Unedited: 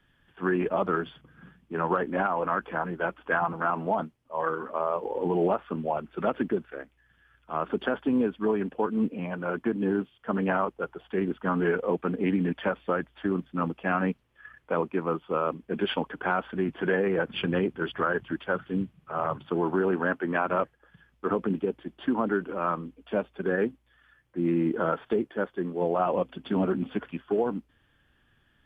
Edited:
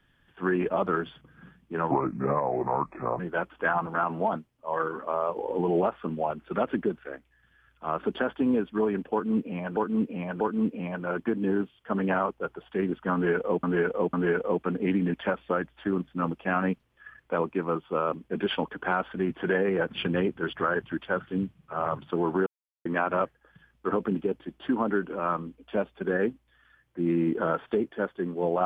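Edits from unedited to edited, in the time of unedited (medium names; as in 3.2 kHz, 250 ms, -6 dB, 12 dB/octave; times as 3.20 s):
1.91–2.86 s: speed 74%
8.79–9.43 s: loop, 3 plays
11.52–12.02 s: loop, 3 plays
19.85–20.24 s: mute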